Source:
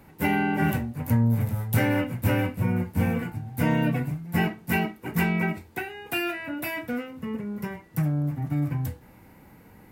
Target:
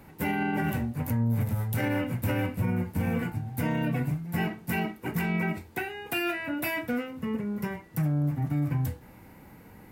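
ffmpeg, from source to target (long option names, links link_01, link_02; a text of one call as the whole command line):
ffmpeg -i in.wav -af "alimiter=limit=-20.5dB:level=0:latency=1:release=79,volume=1dB" out.wav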